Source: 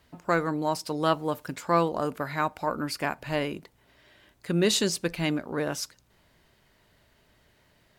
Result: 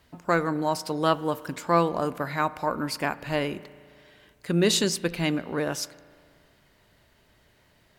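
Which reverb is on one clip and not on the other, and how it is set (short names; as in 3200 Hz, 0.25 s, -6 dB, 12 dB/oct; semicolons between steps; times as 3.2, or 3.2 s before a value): spring tank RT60 2.1 s, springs 35 ms, chirp 35 ms, DRR 17 dB; gain +1.5 dB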